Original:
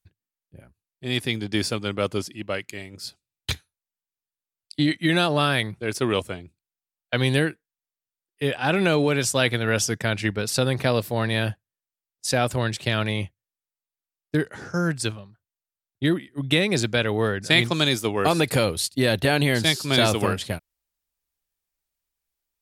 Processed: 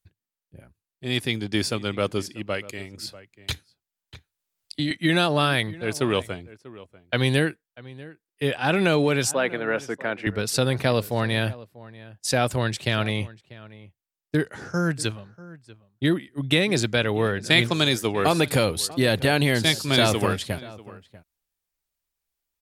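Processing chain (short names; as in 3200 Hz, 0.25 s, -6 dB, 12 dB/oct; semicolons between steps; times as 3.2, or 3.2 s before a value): 9.31–10.27 three-band isolator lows -24 dB, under 230 Hz, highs -20 dB, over 2300 Hz; outdoor echo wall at 110 m, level -19 dB; 2.98–4.91 three-band squash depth 40%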